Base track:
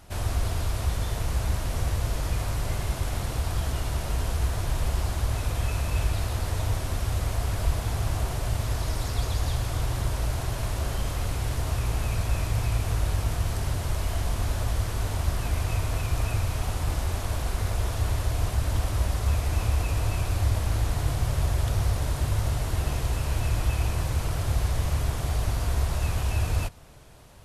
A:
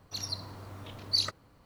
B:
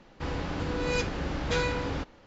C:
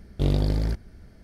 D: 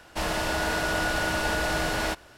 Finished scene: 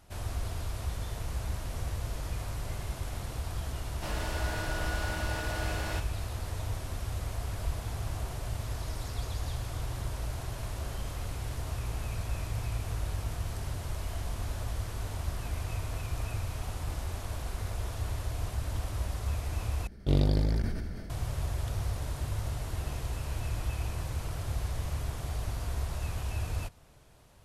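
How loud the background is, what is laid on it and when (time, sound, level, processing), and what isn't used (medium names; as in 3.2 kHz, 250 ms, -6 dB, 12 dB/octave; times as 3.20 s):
base track -8 dB
3.86 s: add D -10 dB
19.87 s: replace with C -3.5 dB + decay stretcher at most 30 dB/s
not used: A, B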